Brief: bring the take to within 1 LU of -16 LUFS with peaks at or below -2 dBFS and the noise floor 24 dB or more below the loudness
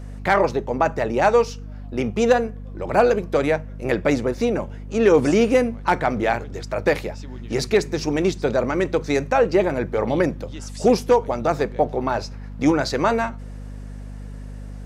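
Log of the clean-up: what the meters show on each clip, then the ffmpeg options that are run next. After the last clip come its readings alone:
hum 50 Hz; harmonics up to 250 Hz; hum level -32 dBFS; loudness -21.0 LUFS; peak -5.5 dBFS; loudness target -16.0 LUFS
-> -af "bandreject=f=50:t=h:w=4,bandreject=f=100:t=h:w=4,bandreject=f=150:t=h:w=4,bandreject=f=200:t=h:w=4,bandreject=f=250:t=h:w=4"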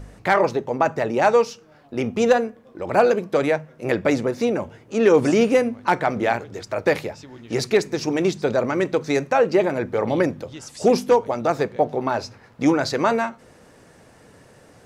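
hum none; loudness -21.0 LUFS; peak -5.5 dBFS; loudness target -16.0 LUFS
-> -af "volume=5dB,alimiter=limit=-2dB:level=0:latency=1"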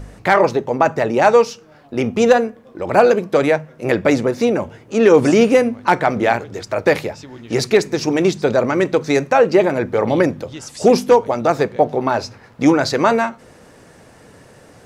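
loudness -16.5 LUFS; peak -2.0 dBFS; noise floor -46 dBFS

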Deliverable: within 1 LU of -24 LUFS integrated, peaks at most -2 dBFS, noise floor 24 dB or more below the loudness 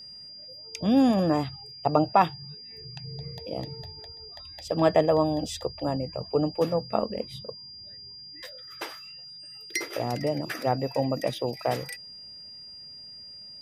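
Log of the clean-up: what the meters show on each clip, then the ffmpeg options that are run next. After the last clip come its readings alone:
steady tone 4800 Hz; tone level -42 dBFS; loudness -27.5 LUFS; peak -6.5 dBFS; loudness target -24.0 LUFS
-> -af "bandreject=f=4.8k:w=30"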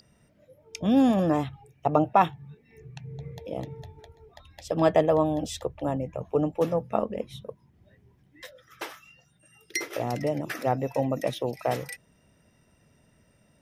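steady tone none; loudness -27.0 LUFS; peak -6.5 dBFS; loudness target -24.0 LUFS
-> -af "volume=3dB"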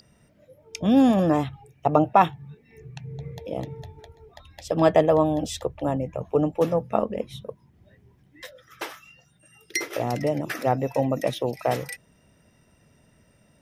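loudness -24.0 LUFS; peak -3.5 dBFS; noise floor -61 dBFS

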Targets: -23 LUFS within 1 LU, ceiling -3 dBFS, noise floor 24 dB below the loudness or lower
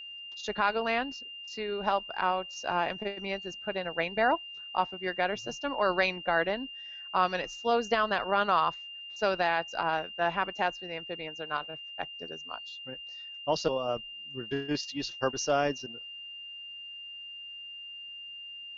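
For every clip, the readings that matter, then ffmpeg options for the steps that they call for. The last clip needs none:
steady tone 2800 Hz; tone level -41 dBFS; loudness -31.5 LUFS; peak -13.0 dBFS; loudness target -23.0 LUFS
-> -af "bandreject=f=2.8k:w=30"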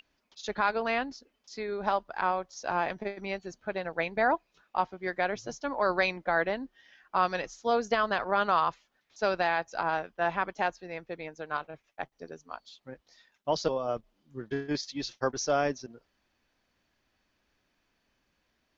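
steady tone none; loudness -31.0 LUFS; peak -13.0 dBFS; loudness target -23.0 LUFS
-> -af "volume=8dB"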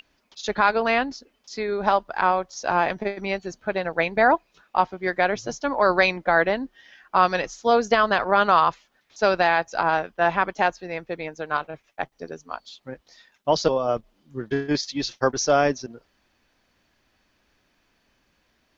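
loudness -23.0 LUFS; peak -5.0 dBFS; noise floor -68 dBFS

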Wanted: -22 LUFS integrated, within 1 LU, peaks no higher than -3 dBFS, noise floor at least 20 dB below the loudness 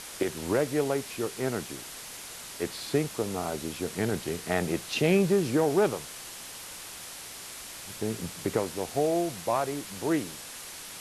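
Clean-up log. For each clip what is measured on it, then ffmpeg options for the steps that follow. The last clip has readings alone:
noise floor -43 dBFS; noise floor target -51 dBFS; loudness -30.5 LUFS; peak -11.0 dBFS; loudness target -22.0 LUFS
-> -af "afftdn=nr=8:nf=-43"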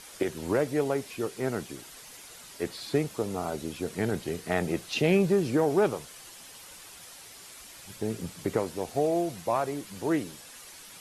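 noise floor -48 dBFS; noise floor target -50 dBFS
-> -af "afftdn=nr=6:nf=-48"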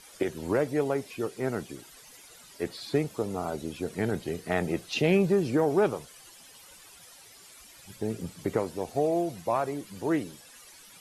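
noise floor -52 dBFS; loudness -29.5 LUFS; peak -11.0 dBFS; loudness target -22.0 LUFS
-> -af "volume=7.5dB"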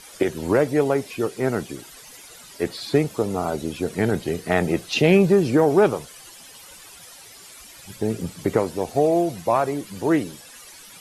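loudness -22.0 LUFS; peak -3.5 dBFS; noise floor -45 dBFS

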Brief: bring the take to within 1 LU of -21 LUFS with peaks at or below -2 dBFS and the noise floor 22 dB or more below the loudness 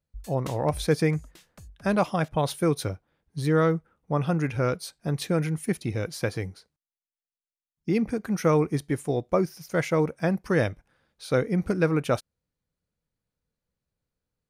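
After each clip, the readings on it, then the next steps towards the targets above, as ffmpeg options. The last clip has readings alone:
loudness -26.5 LUFS; peak -10.0 dBFS; loudness target -21.0 LUFS
-> -af "volume=5.5dB"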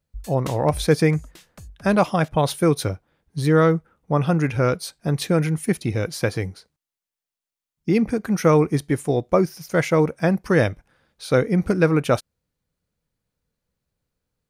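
loudness -21.0 LUFS; peak -4.5 dBFS; noise floor -89 dBFS

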